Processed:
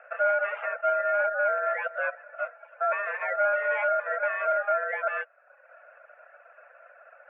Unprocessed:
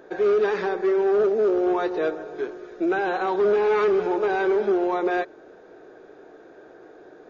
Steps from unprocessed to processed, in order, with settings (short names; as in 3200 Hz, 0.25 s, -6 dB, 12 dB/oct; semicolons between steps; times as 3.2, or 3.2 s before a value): ring modulator 710 Hz; hard clip -16.5 dBFS, distortion -27 dB; reverb removal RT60 0.82 s; mistuned SSB +310 Hz 200–2100 Hz